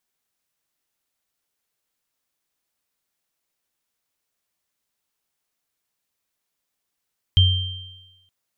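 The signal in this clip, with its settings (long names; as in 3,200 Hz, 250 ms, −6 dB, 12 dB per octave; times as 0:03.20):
inharmonic partials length 0.92 s, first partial 91.1 Hz, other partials 3,150 Hz, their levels −5 dB, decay 0.97 s, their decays 1.20 s, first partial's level −10 dB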